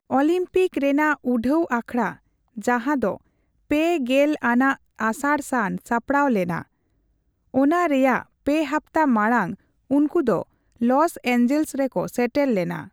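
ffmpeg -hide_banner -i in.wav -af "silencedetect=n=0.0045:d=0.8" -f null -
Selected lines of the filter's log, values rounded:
silence_start: 6.64
silence_end: 7.54 | silence_duration: 0.90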